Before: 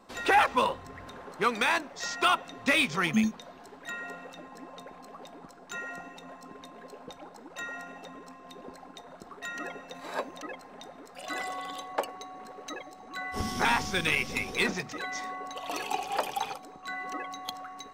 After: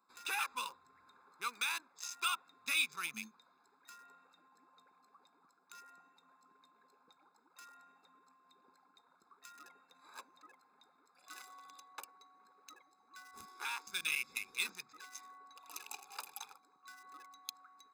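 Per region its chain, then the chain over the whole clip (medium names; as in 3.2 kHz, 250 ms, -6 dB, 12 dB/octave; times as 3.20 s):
13.45–13.87 s: brick-wall FIR high-pass 270 Hz + treble shelf 3.3 kHz -8 dB
whole clip: local Wiener filter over 15 samples; differentiator; comb 0.8 ms, depth 73%; trim -1.5 dB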